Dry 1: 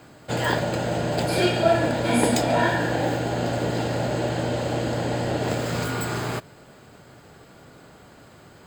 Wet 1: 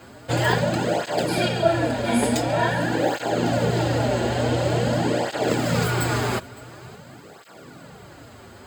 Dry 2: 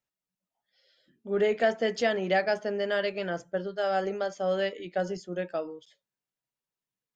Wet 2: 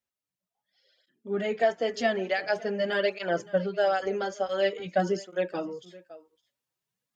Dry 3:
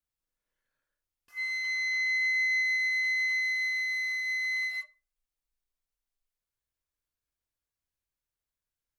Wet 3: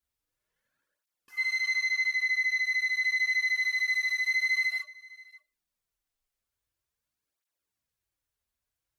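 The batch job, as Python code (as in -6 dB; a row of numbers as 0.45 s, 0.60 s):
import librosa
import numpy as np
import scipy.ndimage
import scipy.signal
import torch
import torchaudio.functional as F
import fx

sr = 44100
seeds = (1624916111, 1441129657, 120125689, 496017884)

p1 = fx.rider(x, sr, range_db=3, speed_s=0.5)
p2 = p1 + fx.echo_single(p1, sr, ms=564, db=-21.5, dry=0)
p3 = fx.flanger_cancel(p2, sr, hz=0.47, depth_ms=6.9)
y = p3 * librosa.db_to_amplitude(4.5)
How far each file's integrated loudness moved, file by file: +1.5 LU, +0.5 LU, +1.0 LU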